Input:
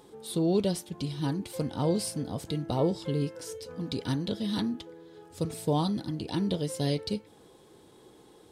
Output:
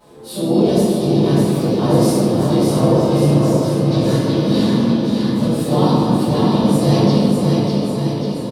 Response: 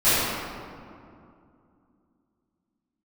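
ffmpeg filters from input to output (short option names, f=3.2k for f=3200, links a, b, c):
-filter_complex "[0:a]asplit=3[a][b][c];[b]asetrate=35002,aresample=44100,atempo=1.25992,volume=-10dB[d];[c]asetrate=52444,aresample=44100,atempo=0.840896,volume=-4dB[e];[a][d][e]amix=inputs=3:normalize=0,aecho=1:1:600|1140|1626|2063|2457:0.631|0.398|0.251|0.158|0.1[f];[1:a]atrim=start_sample=2205[g];[f][g]afir=irnorm=-1:irlink=0,volume=-10dB"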